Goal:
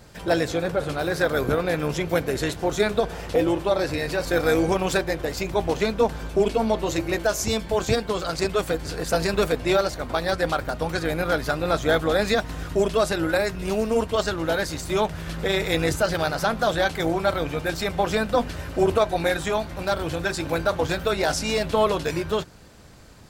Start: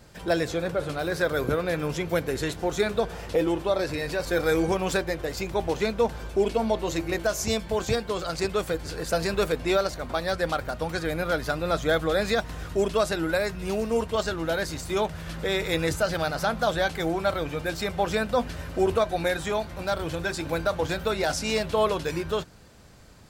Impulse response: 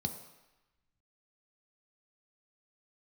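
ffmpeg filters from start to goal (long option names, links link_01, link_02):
-af "acontrast=81,tremolo=f=220:d=0.519,volume=-1.5dB"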